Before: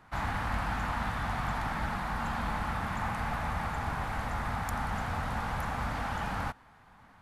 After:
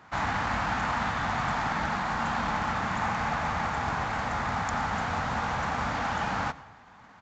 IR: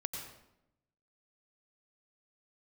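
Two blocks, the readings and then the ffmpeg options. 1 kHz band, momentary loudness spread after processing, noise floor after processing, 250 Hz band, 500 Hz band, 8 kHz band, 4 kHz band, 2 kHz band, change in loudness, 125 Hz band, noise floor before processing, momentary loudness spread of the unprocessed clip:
+5.5 dB, 2 LU, −53 dBFS, +3.5 dB, +5.5 dB, +5.0 dB, +6.0 dB, +5.5 dB, +4.5 dB, +0.5 dB, −58 dBFS, 2 LU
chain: -filter_complex "[0:a]highpass=frequency=160:poles=1,acrusher=bits=4:mode=log:mix=0:aa=0.000001,aresample=16000,aresample=44100,asplit=2[link_01][link_02];[1:a]atrim=start_sample=2205[link_03];[link_02][link_03]afir=irnorm=-1:irlink=0,volume=-13dB[link_04];[link_01][link_04]amix=inputs=2:normalize=0,volume=4dB"

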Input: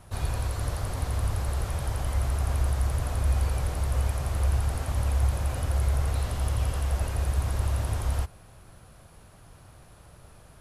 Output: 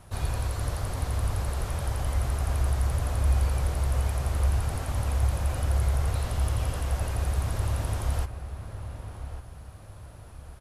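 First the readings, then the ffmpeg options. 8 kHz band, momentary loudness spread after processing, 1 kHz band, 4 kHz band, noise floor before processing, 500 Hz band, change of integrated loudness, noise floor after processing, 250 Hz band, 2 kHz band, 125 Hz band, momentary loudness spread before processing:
0.0 dB, 15 LU, +0.5 dB, 0.0 dB, −52 dBFS, +0.5 dB, 0.0 dB, −46 dBFS, +0.5 dB, 0.0 dB, 0.0 dB, 4 LU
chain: -filter_complex "[0:a]asplit=2[link_01][link_02];[link_02]adelay=1149,lowpass=frequency=2200:poles=1,volume=-10dB,asplit=2[link_03][link_04];[link_04]adelay=1149,lowpass=frequency=2200:poles=1,volume=0.39,asplit=2[link_05][link_06];[link_06]adelay=1149,lowpass=frequency=2200:poles=1,volume=0.39,asplit=2[link_07][link_08];[link_08]adelay=1149,lowpass=frequency=2200:poles=1,volume=0.39[link_09];[link_01][link_03][link_05][link_07][link_09]amix=inputs=5:normalize=0"

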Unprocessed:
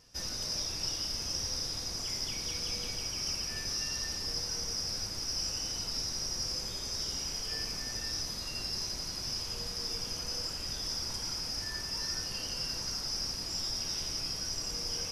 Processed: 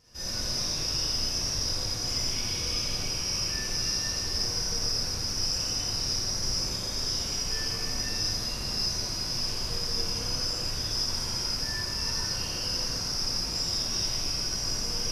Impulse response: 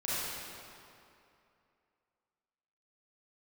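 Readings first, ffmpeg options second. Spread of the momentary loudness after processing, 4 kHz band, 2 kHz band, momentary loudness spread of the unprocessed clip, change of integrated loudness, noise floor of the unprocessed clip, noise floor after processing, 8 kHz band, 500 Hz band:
2 LU, +5.5 dB, +5.5 dB, 2 LU, +5.5 dB, −39 dBFS, −33 dBFS, +5.0 dB, +6.5 dB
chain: -filter_complex "[0:a]lowshelf=frequency=250:gain=3.5[link_01];[1:a]atrim=start_sample=2205,afade=type=out:start_time=0.32:duration=0.01,atrim=end_sample=14553[link_02];[link_01][link_02]afir=irnorm=-1:irlink=0"

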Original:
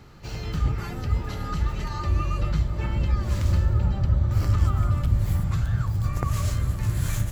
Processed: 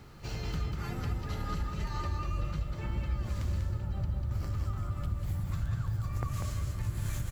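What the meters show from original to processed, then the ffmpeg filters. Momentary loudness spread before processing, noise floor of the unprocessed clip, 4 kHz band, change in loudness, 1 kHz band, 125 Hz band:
6 LU, −34 dBFS, −7.0 dB, −9.5 dB, −7.5 dB, −10.0 dB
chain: -af "acompressor=threshold=-28dB:ratio=6,acrusher=bits=10:mix=0:aa=0.000001,aecho=1:1:194:0.562,volume=-3dB"

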